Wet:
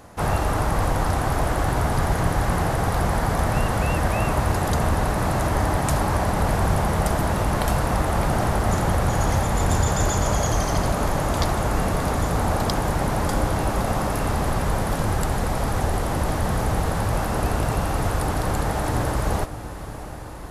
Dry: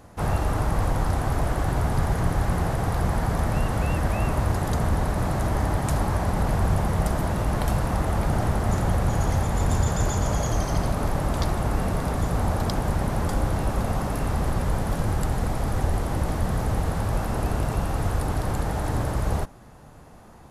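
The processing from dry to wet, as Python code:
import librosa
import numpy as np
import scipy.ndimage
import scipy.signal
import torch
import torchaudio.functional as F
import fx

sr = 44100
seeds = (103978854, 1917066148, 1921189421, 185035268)

y = fx.low_shelf(x, sr, hz=320.0, db=-5.5)
y = fx.echo_diffused(y, sr, ms=679, feedback_pct=75, wet_db=-15.0)
y = y * librosa.db_to_amplitude(5.5)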